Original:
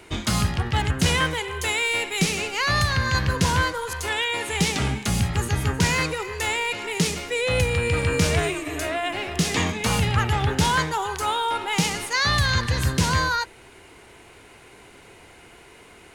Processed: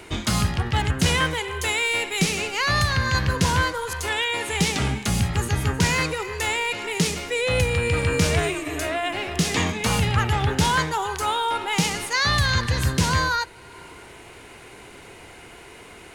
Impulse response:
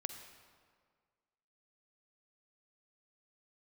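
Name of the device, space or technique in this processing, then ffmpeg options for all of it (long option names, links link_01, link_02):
ducked reverb: -filter_complex "[0:a]asplit=3[link_01][link_02][link_03];[1:a]atrim=start_sample=2205[link_04];[link_02][link_04]afir=irnorm=-1:irlink=0[link_05];[link_03]apad=whole_len=712019[link_06];[link_05][link_06]sidechaincompress=threshold=-45dB:ratio=8:attack=16:release=266,volume=-0.5dB[link_07];[link_01][link_07]amix=inputs=2:normalize=0"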